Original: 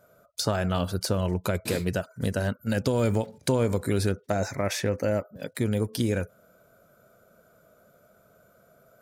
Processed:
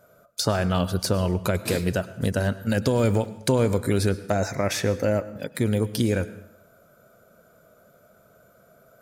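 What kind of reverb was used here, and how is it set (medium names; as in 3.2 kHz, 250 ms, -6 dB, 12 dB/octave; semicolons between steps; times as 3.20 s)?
plate-style reverb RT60 0.75 s, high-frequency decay 0.85×, pre-delay 90 ms, DRR 16 dB; trim +3 dB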